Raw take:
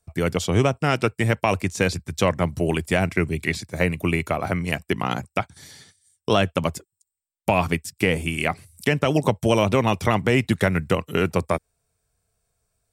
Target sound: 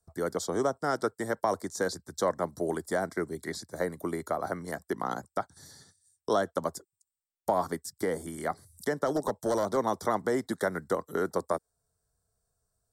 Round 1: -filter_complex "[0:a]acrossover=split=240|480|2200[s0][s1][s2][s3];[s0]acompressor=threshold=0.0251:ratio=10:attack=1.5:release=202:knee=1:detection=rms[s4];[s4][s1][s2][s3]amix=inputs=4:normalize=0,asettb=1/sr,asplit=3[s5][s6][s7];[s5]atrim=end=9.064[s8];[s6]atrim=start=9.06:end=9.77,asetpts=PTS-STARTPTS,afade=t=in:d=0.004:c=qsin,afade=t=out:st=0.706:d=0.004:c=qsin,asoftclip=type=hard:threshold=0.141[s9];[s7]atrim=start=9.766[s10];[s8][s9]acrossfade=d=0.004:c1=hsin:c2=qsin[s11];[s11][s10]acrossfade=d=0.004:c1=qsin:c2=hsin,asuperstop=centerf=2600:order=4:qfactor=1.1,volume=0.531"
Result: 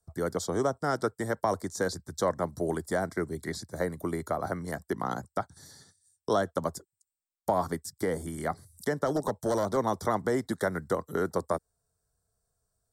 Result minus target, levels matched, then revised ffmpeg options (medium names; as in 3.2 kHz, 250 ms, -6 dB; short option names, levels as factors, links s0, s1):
compression: peak gain reduction -8.5 dB
-filter_complex "[0:a]acrossover=split=240|480|2200[s0][s1][s2][s3];[s0]acompressor=threshold=0.00841:ratio=10:attack=1.5:release=202:knee=1:detection=rms[s4];[s4][s1][s2][s3]amix=inputs=4:normalize=0,asettb=1/sr,asplit=3[s5][s6][s7];[s5]atrim=end=9.064[s8];[s6]atrim=start=9.06:end=9.77,asetpts=PTS-STARTPTS,afade=t=in:d=0.004:c=qsin,afade=t=out:st=0.706:d=0.004:c=qsin,asoftclip=type=hard:threshold=0.141[s9];[s7]atrim=start=9.766[s10];[s8][s9]acrossfade=d=0.004:c1=hsin:c2=qsin[s11];[s11][s10]acrossfade=d=0.004:c1=qsin:c2=hsin,asuperstop=centerf=2600:order=4:qfactor=1.1,volume=0.531"